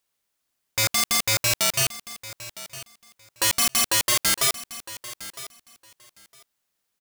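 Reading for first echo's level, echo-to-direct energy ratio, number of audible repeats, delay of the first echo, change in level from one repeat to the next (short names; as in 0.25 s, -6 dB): -16.0 dB, -16.0 dB, 2, 0.959 s, -15.5 dB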